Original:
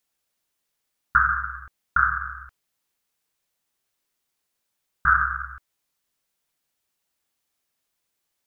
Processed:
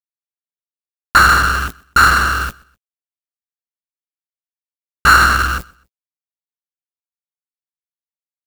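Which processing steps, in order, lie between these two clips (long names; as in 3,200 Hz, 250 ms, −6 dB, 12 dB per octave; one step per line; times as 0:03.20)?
mains-hum notches 60/120/180/240 Hz
bit reduction 9 bits
power curve on the samples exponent 0.35
double-tracking delay 18 ms −14 dB
repeating echo 126 ms, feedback 33%, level −23.5 dB
expander for the loud parts 1.5 to 1, over −21 dBFS
level +3.5 dB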